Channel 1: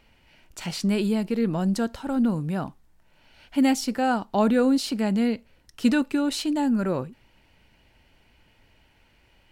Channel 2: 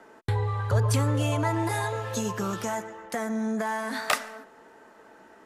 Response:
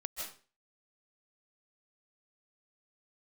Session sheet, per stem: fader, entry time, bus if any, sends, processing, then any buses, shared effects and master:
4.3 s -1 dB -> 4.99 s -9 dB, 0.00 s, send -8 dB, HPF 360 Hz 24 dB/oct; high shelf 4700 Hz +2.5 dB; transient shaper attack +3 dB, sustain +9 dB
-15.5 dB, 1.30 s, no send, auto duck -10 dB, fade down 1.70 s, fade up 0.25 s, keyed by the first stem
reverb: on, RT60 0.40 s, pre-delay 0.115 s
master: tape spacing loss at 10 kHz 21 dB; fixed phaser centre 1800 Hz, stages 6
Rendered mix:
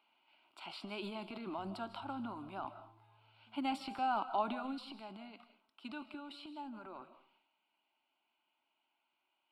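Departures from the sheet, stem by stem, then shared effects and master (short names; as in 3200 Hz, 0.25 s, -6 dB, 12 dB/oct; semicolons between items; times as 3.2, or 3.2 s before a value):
stem 1 -1.0 dB -> -7.5 dB; stem 2 -15.5 dB -> -25.0 dB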